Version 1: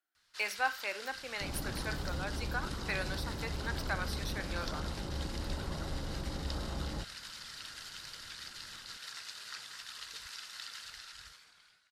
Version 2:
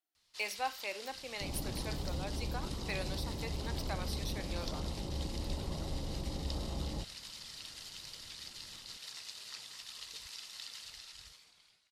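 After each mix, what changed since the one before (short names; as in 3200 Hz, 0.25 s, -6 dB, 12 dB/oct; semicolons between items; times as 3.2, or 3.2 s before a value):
master: add bell 1500 Hz -14 dB 0.59 oct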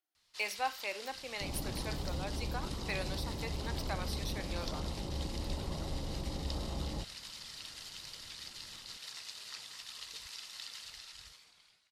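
master: add bell 1400 Hz +2.5 dB 1.9 oct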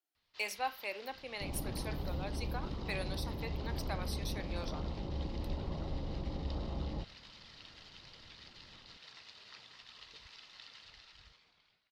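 first sound: add air absorption 240 m; master: add bell 1400 Hz -2.5 dB 1.9 oct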